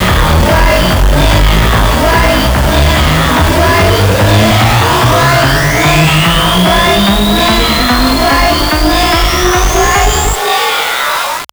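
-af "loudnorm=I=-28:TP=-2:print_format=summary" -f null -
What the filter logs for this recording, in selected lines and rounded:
Input Integrated:     -8.7 LUFS
Input True Peak:      -1.3 dBTP
Input LRA:             2.1 LU
Input Threshold:     -18.7 LUFS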